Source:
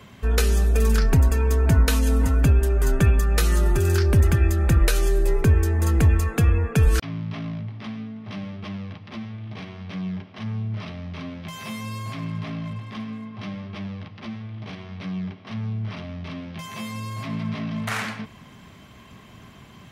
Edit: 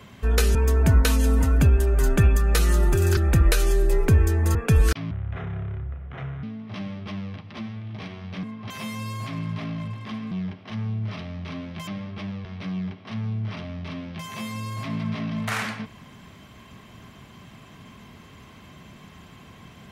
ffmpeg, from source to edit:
-filter_complex "[0:a]asplit=11[a][b][c][d][e][f][g][h][i][j][k];[a]atrim=end=0.552[l];[b]atrim=start=1.378:end=4.002[m];[c]atrim=start=4.528:end=5.912[n];[d]atrim=start=6.618:end=7.184[o];[e]atrim=start=7.18:end=8,asetpts=PTS-STARTPTS,asetrate=27342,aresample=44100[p];[f]atrim=start=7.996:end=10.002[q];[g]atrim=start=13.168:end=13.442[r];[h]atrim=start=11.558:end=13.172[s];[i]atrim=start=9.998:end=11.562[t];[j]atrim=start=13.438:end=14.022[u];[k]atrim=start=14.848[v];[l][m]acrossfade=d=0.004:c1=hsin:c2=hsin[w];[w][n]acrossfade=d=0.004:c1=hsin:c2=hsin[x];[x][o]acrossfade=d=0.004:c1=hsin:c2=hsin[y];[y][p]acrossfade=d=0.004:c1=hsin:c2=hsin[z];[z][q]acrossfade=d=0.004:c1=hsin:c2=hsin[aa];[aa][r]acrossfade=d=0.004:c1=hsin:c2=hsin[ab];[ab][s]acrossfade=d=0.004:c1=hsin:c2=hsin[ac];[ac][t]acrossfade=d=0.004:c1=hsin:c2=hsin[ad];[ad][u]acrossfade=d=0.004:c1=hsin:c2=hsin[ae];[ae][v]acrossfade=d=0.004:c1=hsin:c2=hsin"

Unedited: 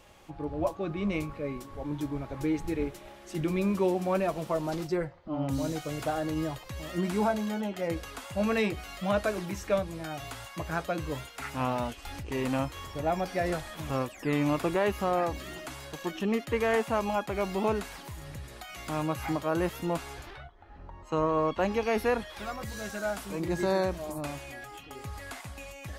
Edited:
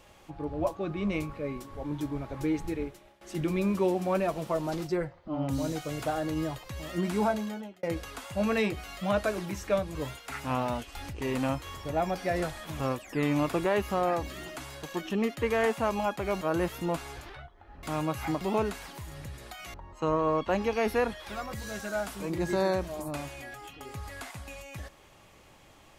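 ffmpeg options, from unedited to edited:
-filter_complex "[0:a]asplit=8[a][b][c][d][e][f][g][h];[a]atrim=end=3.21,asetpts=PTS-STARTPTS,afade=t=out:st=2.61:d=0.6:silence=0.141254[i];[b]atrim=start=3.21:end=7.83,asetpts=PTS-STARTPTS,afade=t=in:d=0.004:c=hsin:silence=0.141254,afade=t=out:st=4.12:d=0.5[j];[c]atrim=start=7.83:end=9.952,asetpts=PTS-STARTPTS,afade=t=in:d=0.004:c=hsin[k];[d]atrim=start=11.048:end=17.512[l];[e]atrim=start=19.418:end=20.842[m];[f]atrim=start=18.838:end=19.422[n];[g]atrim=start=17.508:end=18.842[o];[h]atrim=start=20.838[p];[i][j][k]concat=n=3:v=0:a=1[q];[q][l]acrossfade=d=0.004:c1=hsin:c2=hsin[r];[r][m]acrossfade=d=0.004:c1=hsin:c2=hsin[s];[s][n]acrossfade=d=0.004:c1=hsin:c2=hsin[t];[t][o]acrossfade=d=0.004:c1=hsin:c2=hsin[u];[u][p]acrossfade=d=0.004:c1=hsin:c2=hsin"

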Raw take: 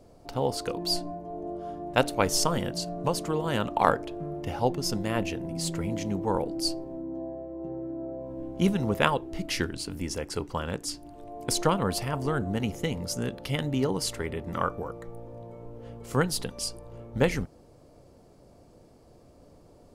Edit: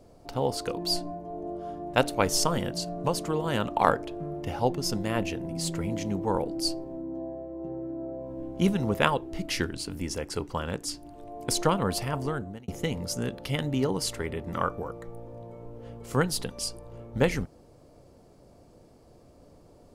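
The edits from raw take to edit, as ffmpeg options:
-filter_complex "[0:a]asplit=2[a][b];[a]atrim=end=12.68,asetpts=PTS-STARTPTS,afade=t=out:st=12.18:d=0.5[c];[b]atrim=start=12.68,asetpts=PTS-STARTPTS,afade=t=in:d=0.004:c=hsin[d];[c][d]concat=n=2:v=0:a=1"

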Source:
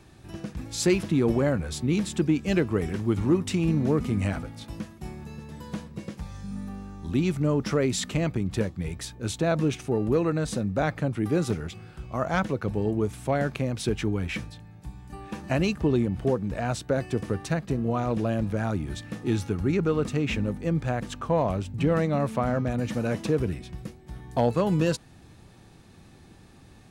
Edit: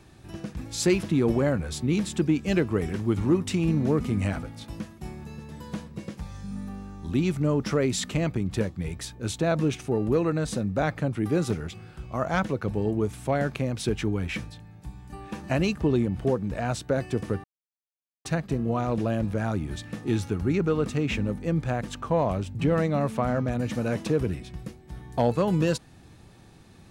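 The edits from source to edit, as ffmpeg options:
-filter_complex "[0:a]asplit=2[a][b];[a]atrim=end=17.44,asetpts=PTS-STARTPTS,afade=t=out:st=17.436:d=0.004:c=hsin,apad=pad_dur=0.81[c];[b]atrim=start=17.44,asetpts=PTS-STARTPTS,afade=t=in:d=0.004:c=hsin[d];[c][d]concat=n=2:v=0:a=1"

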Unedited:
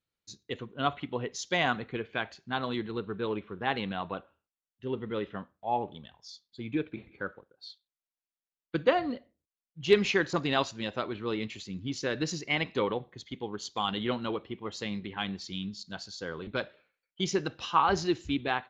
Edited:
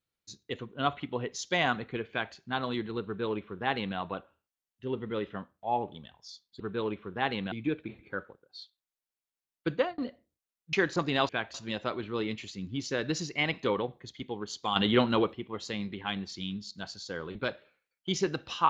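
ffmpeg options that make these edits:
-filter_complex "[0:a]asplit=9[a][b][c][d][e][f][g][h][i];[a]atrim=end=6.602[j];[b]atrim=start=3.048:end=3.972[k];[c]atrim=start=6.598:end=9.06,asetpts=PTS-STARTPTS,afade=t=out:st=2.202:d=0.26[l];[d]atrim=start=9.06:end=9.812,asetpts=PTS-STARTPTS,afade=t=in:d=0.004:c=hsin[m];[e]atrim=start=10.098:end=10.662[n];[f]atrim=start=2.098:end=2.352[o];[g]atrim=start=10.658:end=13.882[p];[h]atrim=start=13.878:end=14.452,asetpts=PTS-STARTPTS,volume=7dB[q];[i]atrim=start=14.448[r];[j][k]acrossfade=d=0.004:c1=hsin:c2=hsin[s];[l][m]concat=n=2:v=0:a=1[t];[s][t]acrossfade=d=0.004:c1=hsin:c2=hsin[u];[u][n]acrossfade=d=0.004:c1=hsin:c2=hsin[v];[v][o]acrossfade=d=0.004:c1=hsin:c2=hsin[w];[w][p]acrossfade=d=0.004:c1=hsin:c2=hsin[x];[x][q]acrossfade=d=0.004:c1=hsin:c2=hsin[y];[y][r]acrossfade=d=0.004:c1=hsin:c2=hsin"

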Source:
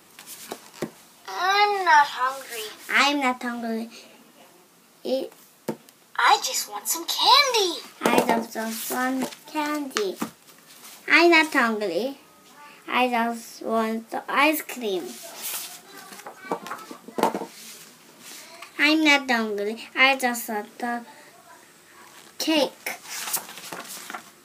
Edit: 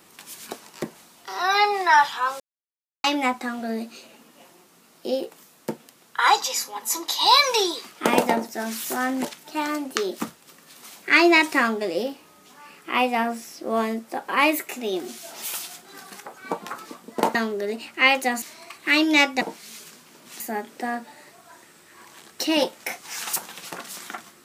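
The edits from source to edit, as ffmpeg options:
-filter_complex "[0:a]asplit=7[a][b][c][d][e][f][g];[a]atrim=end=2.4,asetpts=PTS-STARTPTS,afade=t=out:st=2.396:d=0.004:c=hsin[h];[b]atrim=start=2.4:end=3.04,asetpts=PTS-STARTPTS,volume=0[i];[c]atrim=start=3.04:end=17.352,asetpts=PTS-STARTPTS,afade=t=in:d=0.004:c=hsin[j];[d]atrim=start=19.328:end=20.402[k];[e]atrim=start=18.338:end=19.332[l];[f]atrim=start=17.348:end=18.342[m];[g]atrim=start=20.398[n];[h][i][j]concat=n=3:v=0:a=1[o];[o][k]acrossfade=d=0.004:c1=hsin:c2=hsin[p];[p][l]acrossfade=d=0.004:c1=hsin:c2=hsin[q];[q][m]acrossfade=d=0.004:c1=hsin:c2=hsin[r];[r][n]acrossfade=d=0.004:c1=hsin:c2=hsin"

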